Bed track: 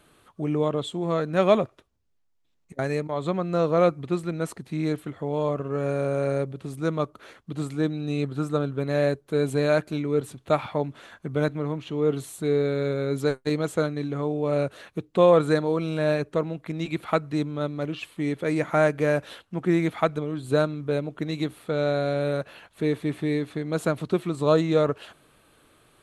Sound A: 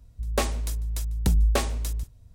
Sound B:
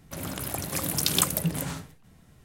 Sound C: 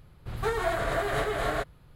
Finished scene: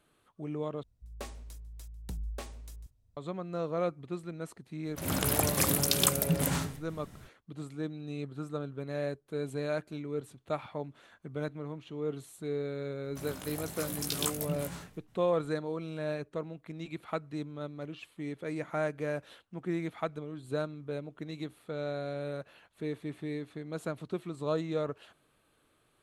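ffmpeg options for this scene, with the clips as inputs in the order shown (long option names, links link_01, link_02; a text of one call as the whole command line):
ffmpeg -i bed.wav -i cue0.wav -i cue1.wav -filter_complex "[2:a]asplit=2[link_01][link_02];[0:a]volume=-11.5dB[link_03];[link_01]dynaudnorm=framelen=140:gausssize=3:maxgain=11.5dB[link_04];[link_02]flanger=delay=16.5:depth=3.3:speed=1.1[link_05];[link_03]asplit=2[link_06][link_07];[link_06]atrim=end=0.834[link_08];[1:a]atrim=end=2.34,asetpts=PTS-STARTPTS,volume=-17.5dB[link_09];[link_07]atrim=start=3.166[link_10];[link_04]atrim=end=2.44,asetpts=PTS-STARTPTS,volume=-6.5dB,afade=type=in:duration=0.004:curve=hsin,afade=type=out:start_time=2.436:duration=0.004:curve=hsin,adelay=213885S[link_11];[link_05]atrim=end=2.44,asetpts=PTS-STARTPTS,volume=-6dB,afade=type=in:duration=0.004:curve=hsin,afade=type=out:start_time=2.436:duration=0.004:curve=hsin,adelay=13040[link_12];[link_08][link_09]acrossfade=duration=0.004:curve1=hsin:curve2=hsin[link_13];[link_13][link_10]acrossfade=duration=0.004:curve1=hsin:curve2=hsin[link_14];[link_14][link_11][link_12]amix=inputs=3:normalize=0" out.wav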